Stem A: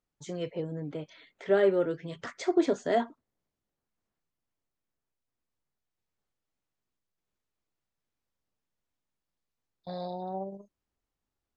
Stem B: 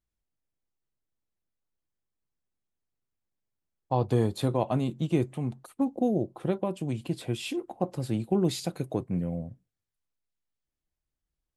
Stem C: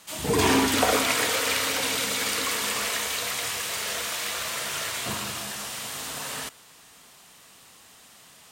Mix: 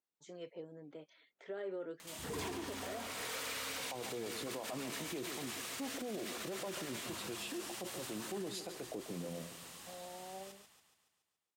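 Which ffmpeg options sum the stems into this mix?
-filter_complex "[0:a]highpass=260,alimiter=limit=0.0708:level=0:latency=1:release=33,volume=0.251,asplit=2[s0][s1];[1:a]highpass=260,equalizer=f=440:w=1.5:g=3,acrossover=split=440[s2][s3];[s2]aeval=exprs='val(0)*(1-0.7/2+0.7/2*cos(2*PI*8.8*n/s))':c=same[s4];[s3]aeval=exprs='val(0)*(1-0.7/2-0.7/2*cos(2*PI*8.8*n/s))':c=same[s5];[s4][s5]amix=inputs=2:normalize=0,volume=0.668,asplit=2[s6][s7];[s7]volume=0.188[s8];[2:a]acompressor=mode=upward:threshold=0.0501:ratio=2.5,asoftclip=type=tanh:threshold=0.0841,adelay=2000,volume=0.2,asplit=2[s9][s10];[s10]volume=0.335[s11];[s1]apad=whole_len=463835[s12];[s9][s12]sidechaincompress=threshold=0.00501:ratio=8:attack=16:release=534[s13];[s8][s11]amix=inputs=2:normalize=0,aecho=0:1:141|282|423|564|705|846|987|1128:1|0.55|0.303|0.166|0.0915|0.0503|0.0277|0.0152[s14];[s0][s6][s13][s14]amix=inputs=4:normalize=0,alimiter=level_in=2.99:limit=0.0631:level=0:latency=1:release=33,volume=0.335"

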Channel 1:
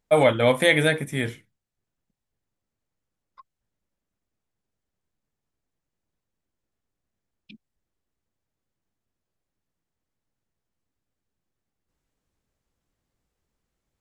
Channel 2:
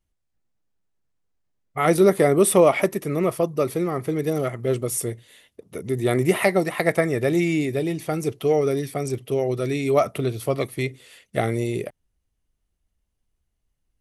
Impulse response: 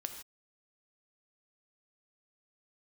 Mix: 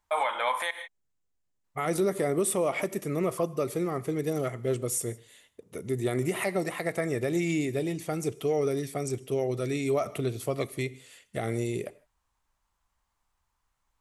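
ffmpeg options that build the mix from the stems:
-filter_complex "[0:a]acompressor=threshold=0.112:ratio=2.5,highpass=f=970:t=q:w=3.7,volume=0.668,asplit=3[s0][s1][s2];[s0]atrim=end=0.71,asetpts=PTS-STARTPTS,afade=t=out:st=0.706:d=0.004:c=hsin[s3];[s1]atrim=start=0.71:end=1.64,asetpts=PTS-STARTPTS,volume=0[s4];[s2]atrim=start=1.64,asetpts=PTS-STARTPTS,afade=t=in:d=0.004:c=hsin[s5];[s3][s4][s5]concat=n=3:v=0:a=1,asplit=2[s6][s7];[s7]volume=0.708[s8];[1:a]equalizer=f=7300:w=2.5:g=7.5,volume=0.422,asplit=2[s9][s10];[s10]volume=0.335[s11];[2:a]atrim=start_sample=2205[s12];[s8][s11]amix=inputs=2:normalize=0[s13];[s13][s12]afir=irnorm=-1:irlink=0[s14];[s6][s9][s14]amix=inputs=3:normalize=0,alimiter=limit=0.126:level=0:latency=1:release=109"

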